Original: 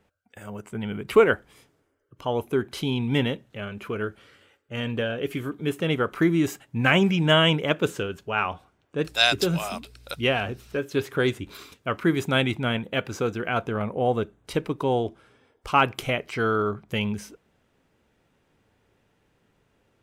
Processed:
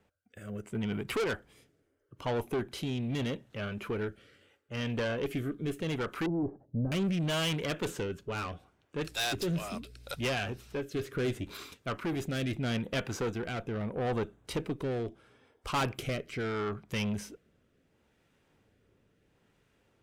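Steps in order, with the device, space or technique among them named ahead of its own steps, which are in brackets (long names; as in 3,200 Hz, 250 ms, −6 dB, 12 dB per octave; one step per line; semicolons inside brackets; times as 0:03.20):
overdriven rotary cabinet (tube saturation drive 26 dB, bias 0.3; rotating-speaker cabinet horn 0.75 Hz)
0:06.26–0:06.92: inverse Chebyshev low-pass filter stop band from 4,300 Hz, stop band 80 dB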